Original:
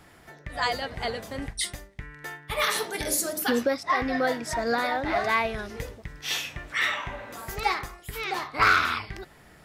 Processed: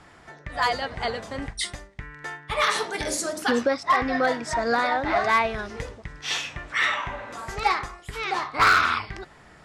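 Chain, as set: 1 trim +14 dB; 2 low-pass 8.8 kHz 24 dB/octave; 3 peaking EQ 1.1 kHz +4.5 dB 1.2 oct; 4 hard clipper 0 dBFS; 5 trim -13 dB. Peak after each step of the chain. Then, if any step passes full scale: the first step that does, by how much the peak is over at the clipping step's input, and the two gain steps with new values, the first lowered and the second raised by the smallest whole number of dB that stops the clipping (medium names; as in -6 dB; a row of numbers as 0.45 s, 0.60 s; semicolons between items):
+3.0 dBFS, +3.0 dBFS, +6.0 dBFS, 0.0 dBFS, -13.0 dBFS; step 1, 6.0 dB; step 1 +8 dB, step 5 -7 dB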